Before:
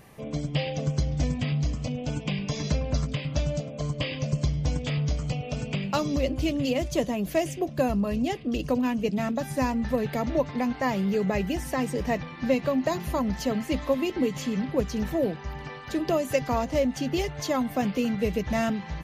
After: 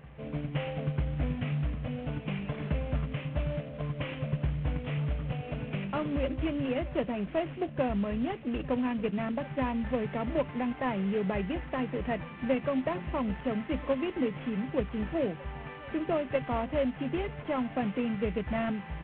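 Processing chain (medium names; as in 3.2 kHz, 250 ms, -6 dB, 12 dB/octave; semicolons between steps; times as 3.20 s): CVSD coder 16 kbps; reverse echo 944 ms -21 dB; trim -4 dB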